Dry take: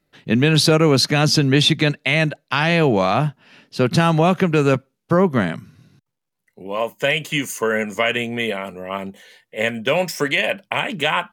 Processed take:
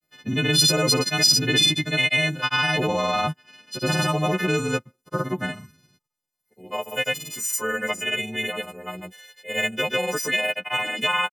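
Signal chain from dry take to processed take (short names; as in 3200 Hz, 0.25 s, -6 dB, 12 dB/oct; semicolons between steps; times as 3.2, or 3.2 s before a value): frequency quantiser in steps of 3 st; grains, pitch spread up and down by 0 st; short-mantissa float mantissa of 8-bit; gain -6.5 dB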